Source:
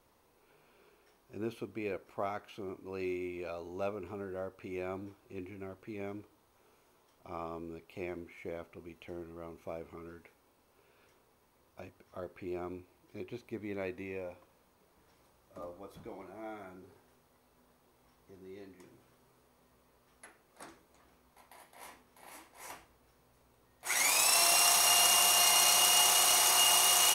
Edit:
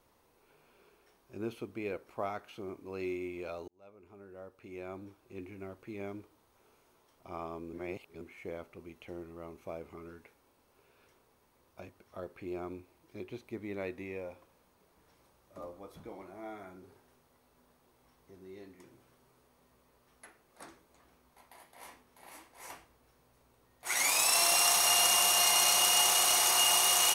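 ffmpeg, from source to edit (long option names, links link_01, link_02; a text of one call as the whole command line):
ffmpeg -i in.wav -filter_complex "[0:a]asplit=4[link_01][link_02][link_03][link_04];[link_01]atrim=end=3.68,asetpts=PTS-STARTPTS,afade=type=out:start_time=3.676:duration=0.004:curve=hsin[link_05];[link_02]atrim=start=3.68:end=7.732,asetpts=PTS-STARTPTS,afade=type=in:duration=1.95[link_06];[link_03]atrim=start=7.728:end=8.212,asetpts=PTS-STARTPTS,areverse[link_07];[link_04]atrim=start=8.208[link_08];[link_05][link_06]concat=n=2:v=0:a=1[link_09];[link_09][link_07]acrossfade=duration=0.004:curve1=hsin:curve2=hsin[link_10];[link_10][link_08]acrossfade=duration=0.004:curve1=hsin:curve2=hsin" out.wav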